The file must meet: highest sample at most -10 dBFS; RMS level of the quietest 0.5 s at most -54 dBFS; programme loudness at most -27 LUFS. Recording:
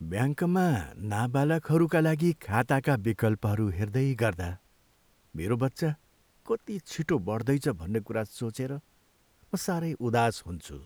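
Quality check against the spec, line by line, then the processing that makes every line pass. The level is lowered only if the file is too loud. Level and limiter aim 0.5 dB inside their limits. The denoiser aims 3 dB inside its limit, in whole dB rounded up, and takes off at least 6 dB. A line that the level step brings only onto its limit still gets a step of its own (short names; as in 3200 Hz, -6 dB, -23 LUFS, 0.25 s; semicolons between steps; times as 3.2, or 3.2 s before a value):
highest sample -10.5 dBFS: OK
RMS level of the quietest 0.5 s -66 dBFS: OK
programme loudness -29.0 LUFS: OK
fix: none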